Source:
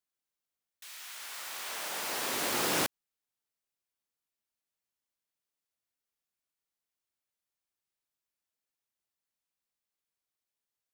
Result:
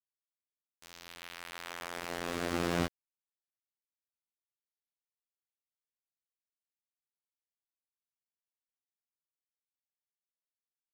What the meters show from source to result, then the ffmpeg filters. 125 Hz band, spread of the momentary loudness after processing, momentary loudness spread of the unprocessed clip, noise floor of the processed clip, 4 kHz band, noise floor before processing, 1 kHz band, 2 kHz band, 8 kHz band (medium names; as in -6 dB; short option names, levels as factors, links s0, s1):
+8.0 dB, 17 LU, 16 LU, under -85 dBFS, -7.5 dB, under -85 dBFS, -3.5 dB, -4.0 dB, -12.5 dB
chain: -filter_complex "[0:a]afftfilt=real='hypot(re,im)*cos(PI*b)':imag='0':win_size=2048:overlap=0.75,aemphasis=mode=reproduction:type=riaa,asplit=2[s0][s1];[s1]acompressor=threshold=0.00562:ratio=6,volume=1[s2];[s0][s2]amix=inputs=2:normalize=0,bandreject=f=910:w=7.7,aeval=exprs='val(0)*gte(abs(val(0)),0.0106)':c=same"